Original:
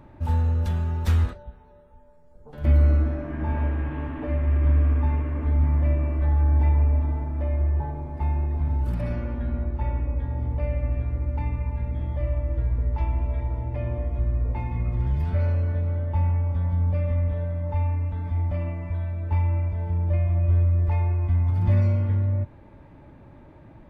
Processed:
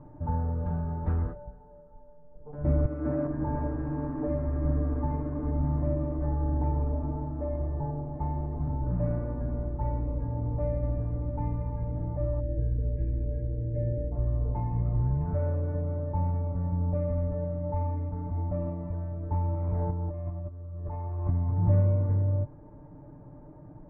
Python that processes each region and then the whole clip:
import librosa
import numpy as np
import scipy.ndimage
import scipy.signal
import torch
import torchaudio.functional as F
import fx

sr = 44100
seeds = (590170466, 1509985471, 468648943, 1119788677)

y = fx.chain(x, sr, fx.highpass(hz=78.0, slope=24),
    fx.over_compress(threshold_db=-26.0, ratio=-1.0),
    fx.high_shelf(hz=2200.0, db=11.0), at=(2.85, 3.27))
y = fx.chain(y, sr, fx.brickwall_bandstop(low_hz=620.0, high_hz=1600.0),
    fx.air_absorb(metres=210.0), at=(12.4, 14.12))
y = fx.chain(y, sr, fx.peak_eq(hz=1200.0, db=4.5, octaves=0.77),
    fx.over_compress(threshold_db=-25.0, ratio=-0.5),
    fx.doppler_dist(depth_ms=0.14), at=(19.54, 21.3))
y = scipy.signal.sosfilt(scipy.signal.bessel(4, 850.0, 'lowpass', norm='mag', fs=sr, output='sos'), y)
y = y + 0.64 * np.pad(y, (int(6.7 * sr / 1000.0), 0))[:len(y)]
y = y * librosa.db_to_amplitude(-1.0)